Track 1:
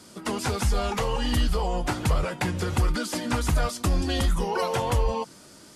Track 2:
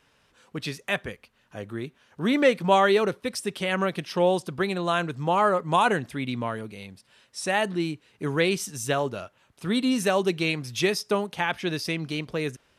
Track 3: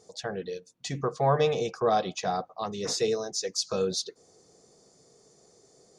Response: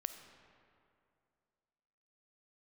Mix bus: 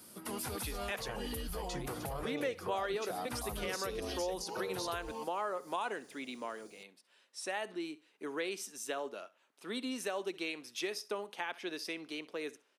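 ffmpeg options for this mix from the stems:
-filter_complex "[0:a]volume=-9dB[link_01];[1:a]highpass=frequency=270:width=0.5412,highpass=frequency=270:width=1.3066,volume=-9.5dB,asplit=3[link_02][link_03][link_04];[link_03]volume=-20dB[link_05];[2:a]agate=range=-33dB:threshold=-56dB:ratio=3:detection=peak,acompressor=threshold=-37dB:ratio=2.5,adelay=850,volume=0.5dB[link_06];[link_04]apad=whole_len=253760[link_07];[link_01][link_07]sidechaincompress=threshold=-41dB:ratio=8:attack=38:release=354[link_08];[link_08][link_06]amix=inputs=2:normalize=0,aexciter=amount=7.6:drive=3.4:freq=9800,alimiter=level_in=4.5dB:limit=-24dB:level=0:latency=1:release=48,volume=-4.5dB,volume=0dB[link_09];[link_05]aecho=0:1:65|130|195|260:1|0.23|0.0529|0.0122[link_10];[link_02][link_09][link_10]amix=inputs=3:normalize=0,lowshelf=frequency=84:gain=-6.5,acompressor=threshold=-35dB:ratio=2.5"

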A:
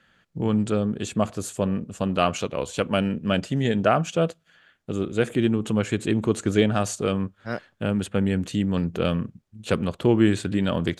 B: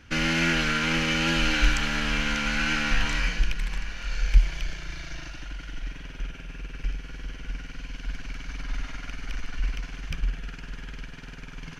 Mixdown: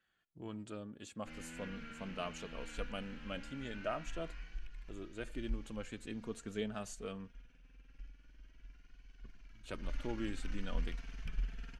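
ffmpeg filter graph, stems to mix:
ffmpeg -i stem1.wav -i stem2.wav -filter_complex "[0:a]lowshelf=frequency=450:gain=-6.5,volume=-14dB,asplit=3[link_01][link_02][link_03];[link_01]atrim=end=7.4,asetpts=PTS-STARTPTS,afade=type=out:start_time=7.396:duration=0.004:curve=hsin[link_04];[link_02]atrim=start=7.4:end=9.24,asetpts=PTS-STARTPTS,volume=0[link_05];[link_03]atrim=start=9.24,asetpts=PTS-STARTPTS,afade=type=in:duration=0.004:curve=hsin[link_06];[link_04][link_05][link_06]concat=n=3:v=0:a=1[link_07];[1:a]acrossover=split=3400[link_08][link_09];[link_09]acompressor=threshold=-44dB:ratio=4:attack=1:release=60[link_10];[link_08][link_10]amix=inputs=2:normalize=0,adelay=1150,volume=-9.5dB,afade=type=in:start_time=9.69:duration=0.26:silence=0.223872[link_11];[link_07][link_11]amix=inputs=2:normalize=0,lowshelf=frequency=170:gain=4,flanger=delay=2.6:depth=2.1:regen=40:speed=0.22:shape=triangular" out.wav

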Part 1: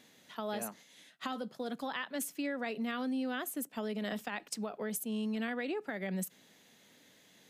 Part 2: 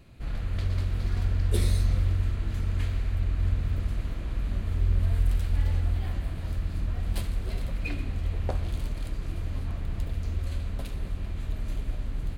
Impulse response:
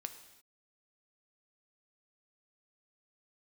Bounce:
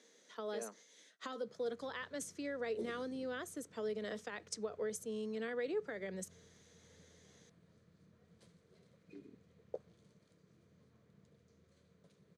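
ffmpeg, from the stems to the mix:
-filter_complex "[0:a]volume=-5dB[link_01];[1:a]afwtdn=0.0501,adelay=1250,volume=-11.5dB[link_02];[link_01][link_02]amix=inputs=2:normalize=0,highpass=frequency=210:width=0.5412,highpass=frequency=210:width=1.3066,equalizer=frequency=250:width_type=q:width=4:gain=-5,equalizer=frequency=460:width_type=q:width=4:gain=10,equalizer=frequency=800:width_type=q:width=4:gain=-7,equalizer=frequency=2700:width_type=q:width=4:gain=-7,equalizer=frequency=6100:width_type=q:width=4:gain=7,lowpass=frequency=9200:width=0.5412,lowpass=frequency=9200:width=1.3066"

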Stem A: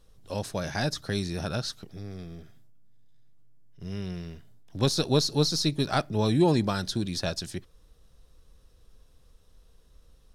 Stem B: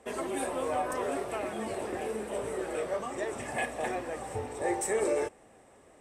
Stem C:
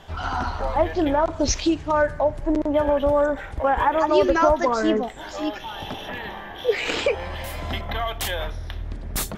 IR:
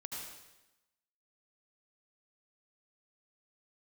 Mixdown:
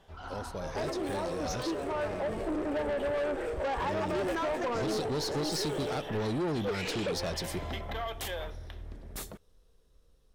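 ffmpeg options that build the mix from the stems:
-filter_complex "[0:a]acompressor=threshold=-27dB:ratio=2.5,volume=-8dB[link_01];[1:a]adynamicsmooth=sensitivity=5.5:basefreq=1800,aemphasis=mode=production:type=75fm,acompressor=threshold=-38dB:ratio=6,adelay=700,volume=1.5dB,asplit=2[link_02][link_03];[link_03]volume=-7dB[link_04];[2:a]volume=-16.5dB,asplit=2[link_05][link_06];[link_06]volume=-18dB[link_07];[link_01][link_05]amix=inputs=2:normalize=0,dynaudnorm=framelen=360:gausssize=13:maxgain=9.5dB,alimiter=limit=-18.5dB:level=0:latency=1:release=231,volume=0dB[link_08];[3:a]atrim=start_sample=2205[link_09];[link_04][link_07]amix=inputs=2:normalize=0[link_10];[link_10][link_09]afir=irnorm=-1:irlink=0[link_11];[link_02][link_08][link_11]amix=inputs=3:normalize=0,equalizer=frequency=430:width=1.5:gain=5.5,asoftclip=type=tanh:threshold=-28dB"

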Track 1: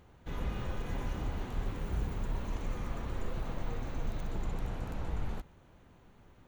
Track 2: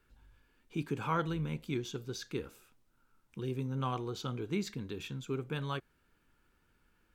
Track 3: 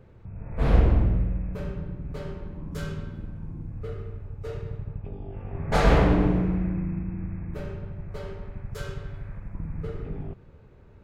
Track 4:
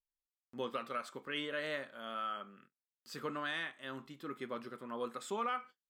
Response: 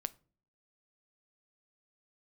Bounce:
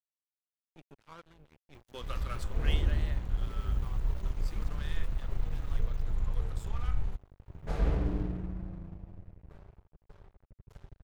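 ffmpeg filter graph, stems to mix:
-filter_complex "[0:a]acompressor=mode=upward:threshold=-45dB:ratio=2.5,adelay=1750,volume=-5.5dB[link_01];[1:a]aeval=exprs='val(0)*gte(abs(val(0)),0.0106)':channel_layout=same,volume=-14.5dB,asplit=2[link_02][link_03];[link_03]volume=-21.5dB[link_04];[2:a]equalizer=frequency=310:width_type=o:width=1.6:gain=10.5,adelay=1950,volume=-19.5dB,asplit=2[link_05][link_06];[link_06]volume=-23.5dB[link_07];[3:a]highshelf=frequency=2700:gain=10,adelay=1350,volume=-3.5dB,afade=type=out:start_time=2.66:duration=0.35:silence=0.398107[link_08];[4:a]atrim=start_sample=2205[link_09];[link_04][link_07]amix=inputs=2:normalize=0[link_10];[link_10][link_09]afir=irnorm=-1:irlink=0[link_11];[link_01][link_02][link_05][link_08][link_11]amix=inputs=5:normalize=0,aeval=exprs='sgn(val(0))*max(abs(val(0))-0.00398,0)':channel_layout=same,asubboost=boost=5:cutoff=110"

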